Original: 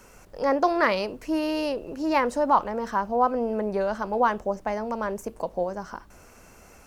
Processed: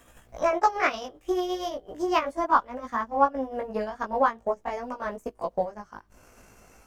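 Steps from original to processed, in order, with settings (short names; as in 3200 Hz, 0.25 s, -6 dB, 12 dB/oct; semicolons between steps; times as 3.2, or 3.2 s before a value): gliding pitch shift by +3.5 st ending unshifted; transient shaper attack +6 dB, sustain -11 dB; chorus 0.4 Hz, delay 15.5 ms, depth 3.9 ms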